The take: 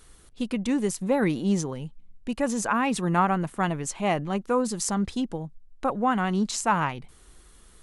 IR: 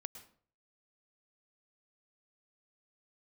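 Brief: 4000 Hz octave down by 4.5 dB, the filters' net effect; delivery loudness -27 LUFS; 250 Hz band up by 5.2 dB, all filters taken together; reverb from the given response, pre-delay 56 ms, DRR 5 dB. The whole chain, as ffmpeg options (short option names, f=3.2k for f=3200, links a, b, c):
-filter_complex "[0:a]equalizer=f=250:t=o:g=6.5,equalizer=f=4k:t=o:g=-6.5,asplit=2[a][b];[1:a]atrim=start_sample=2205,adelay=56[c];[b][c]afir=irnorm=-1:irlink=0,volume=-1dB[d];[a][d]amix=inputs=2:normalize=0,volume=-5dB"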